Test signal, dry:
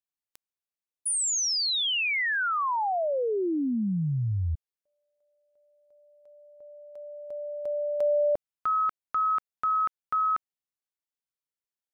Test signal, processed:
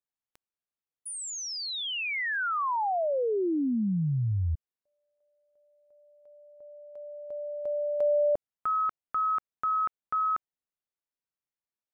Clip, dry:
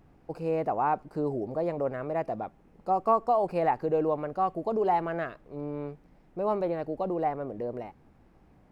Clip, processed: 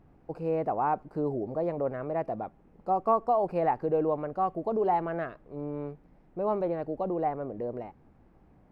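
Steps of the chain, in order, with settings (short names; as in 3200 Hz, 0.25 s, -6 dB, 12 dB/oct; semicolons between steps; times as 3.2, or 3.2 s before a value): high shelf 2800 Hz -11 dB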